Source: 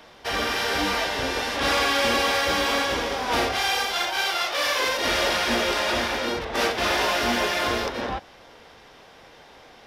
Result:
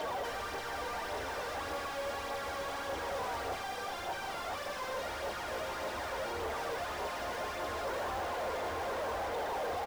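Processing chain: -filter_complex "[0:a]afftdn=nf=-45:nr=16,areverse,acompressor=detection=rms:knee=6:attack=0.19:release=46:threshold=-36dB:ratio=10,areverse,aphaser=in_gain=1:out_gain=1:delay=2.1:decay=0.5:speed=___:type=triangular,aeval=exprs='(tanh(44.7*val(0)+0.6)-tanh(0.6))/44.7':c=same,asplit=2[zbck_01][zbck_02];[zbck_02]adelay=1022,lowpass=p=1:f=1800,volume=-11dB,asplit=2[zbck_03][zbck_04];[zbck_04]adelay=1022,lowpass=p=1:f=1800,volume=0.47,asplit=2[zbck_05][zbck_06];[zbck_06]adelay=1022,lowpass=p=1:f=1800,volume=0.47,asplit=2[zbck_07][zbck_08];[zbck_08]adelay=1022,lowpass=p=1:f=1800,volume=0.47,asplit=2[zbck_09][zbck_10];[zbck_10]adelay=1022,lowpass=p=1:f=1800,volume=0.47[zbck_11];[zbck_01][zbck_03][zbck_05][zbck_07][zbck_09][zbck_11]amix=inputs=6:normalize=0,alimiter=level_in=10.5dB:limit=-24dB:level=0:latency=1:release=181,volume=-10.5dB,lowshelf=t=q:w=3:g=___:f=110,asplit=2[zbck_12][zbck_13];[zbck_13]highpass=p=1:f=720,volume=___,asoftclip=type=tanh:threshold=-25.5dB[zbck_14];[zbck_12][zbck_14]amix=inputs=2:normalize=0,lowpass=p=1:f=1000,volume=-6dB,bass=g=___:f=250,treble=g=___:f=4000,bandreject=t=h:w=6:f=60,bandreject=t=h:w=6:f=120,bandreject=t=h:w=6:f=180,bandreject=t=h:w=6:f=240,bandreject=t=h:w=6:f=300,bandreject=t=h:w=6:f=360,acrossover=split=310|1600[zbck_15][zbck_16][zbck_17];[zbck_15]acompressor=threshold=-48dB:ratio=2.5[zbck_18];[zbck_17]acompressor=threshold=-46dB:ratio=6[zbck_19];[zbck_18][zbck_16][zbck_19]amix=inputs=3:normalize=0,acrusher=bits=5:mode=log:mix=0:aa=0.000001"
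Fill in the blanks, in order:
1.7, 10, 43dB, -4, 9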